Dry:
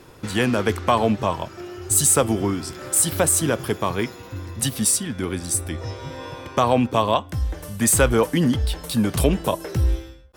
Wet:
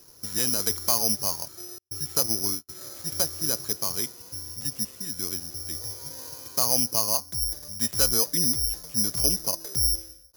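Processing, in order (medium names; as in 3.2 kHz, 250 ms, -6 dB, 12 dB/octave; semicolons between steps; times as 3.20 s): 1.78–2.69 s: gate -24 dBFS, range -49 dB; careless resampling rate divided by 8×, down filtered, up zero stuff; trim -14 dB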